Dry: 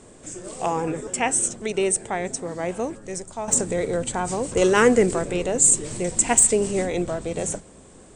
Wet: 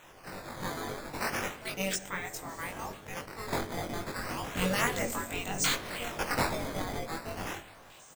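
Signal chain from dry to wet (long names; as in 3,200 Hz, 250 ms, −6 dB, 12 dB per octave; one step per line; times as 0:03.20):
gate on every frequency bin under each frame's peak −10 dB weak
in parallel at −0.5 dB: downward compressor, threshold −36 dBFS, peak gain reduction 16.5 dB
on the sum: sample-and-hold swept by an LFO 9×, swing 160% 0.33 Hz
double-tracking delay 21 ms −2 dB
on a send at −13 dB: convolution reverb RT60 1.2 s, pre-delay 5 ms
on the sum: level that may rise only so fast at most 270 dB per second
level −8 dB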